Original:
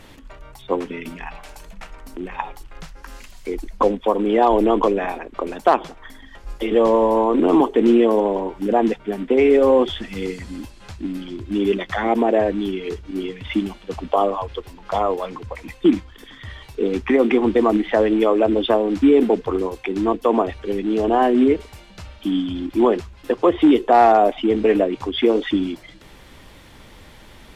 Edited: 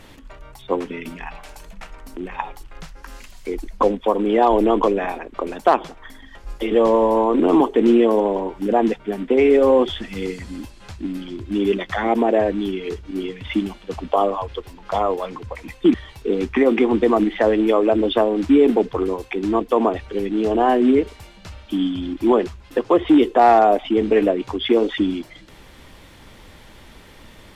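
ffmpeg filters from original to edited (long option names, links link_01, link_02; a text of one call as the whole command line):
ffmpeg -i in.wav -filter_complex "[0:a]asplit=2[link_01][link_02];[link_01]atrim=end=15.942[link_03];[link_02]atrim=start=16.468[link_04];[link_03][link_04]acrossfade=duration=0.004:curve1=hsin:curve2=hsin" out.wav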